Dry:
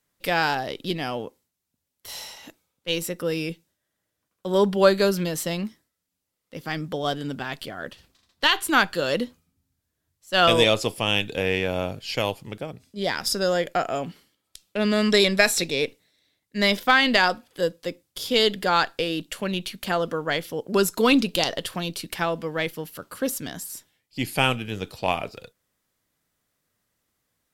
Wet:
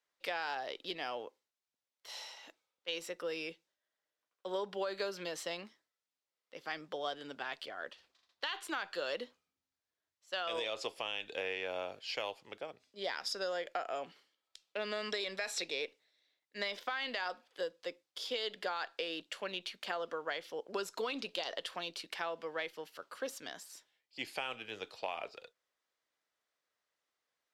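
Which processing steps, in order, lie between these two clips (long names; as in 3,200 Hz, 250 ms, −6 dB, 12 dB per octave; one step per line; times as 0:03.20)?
three-way crossover with the lows and the highs turned down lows −22 dB, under 390 Hz, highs −17 dB, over 6,500 Hz
brickwall limiter −14 dBFS, peak gain reduction 10.5 dB
downward compressor, threshold −26 dBFS, peak gain reduction 7.5 dB
level −7.5 dB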